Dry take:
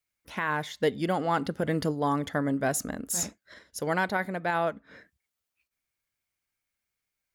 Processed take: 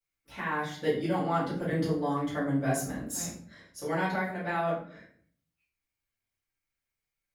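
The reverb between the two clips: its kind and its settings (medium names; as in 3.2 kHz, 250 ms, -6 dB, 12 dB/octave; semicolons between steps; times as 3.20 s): simulated room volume 65 m³, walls mixed, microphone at 2.4 m; trim -14 dB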